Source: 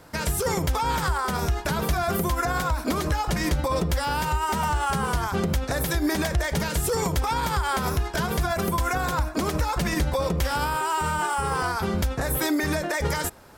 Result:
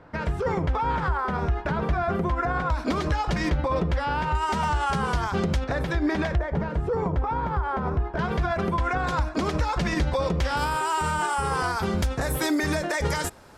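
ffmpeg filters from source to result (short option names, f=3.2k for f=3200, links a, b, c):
-af "asetnsamples=n=441:p=0,asendcmd='2.7 lowpass f 4600;3.5 lowpass f 2700;4.35 lowpass f 5600;5.64 lowpass f 2800;6.38 lowpass f 1200;8.19 lowpass f 2800;9.07 lowpass f 5100;10.57 lowpass f 9600',lowpass=2k"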